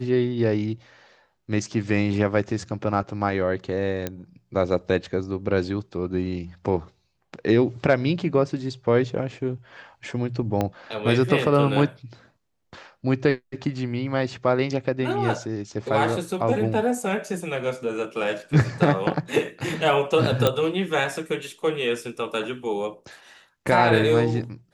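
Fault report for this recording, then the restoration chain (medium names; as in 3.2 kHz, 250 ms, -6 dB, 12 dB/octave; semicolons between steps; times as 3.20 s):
4.07 s: pop -12 dBFS
10.61 s: pop -11 dBFS
20.47 s: pop -6 dBFS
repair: de-click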